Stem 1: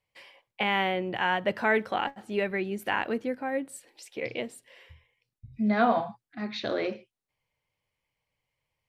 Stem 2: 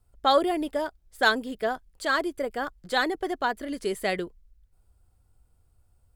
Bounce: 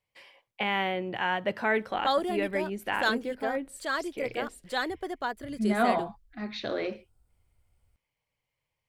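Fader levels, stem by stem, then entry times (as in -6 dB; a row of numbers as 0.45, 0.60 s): -2.0, -5.5 dB; 0.00, 1.80 s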